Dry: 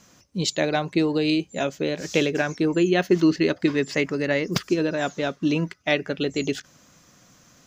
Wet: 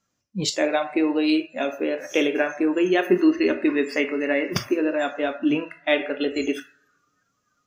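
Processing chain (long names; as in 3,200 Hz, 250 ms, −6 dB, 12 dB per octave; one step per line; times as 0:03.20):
coupled-rooms reverb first 0.61 s, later 2.2 s, DRR 5.5 dB
noise reduction from a noise print of the clip's start 22 dB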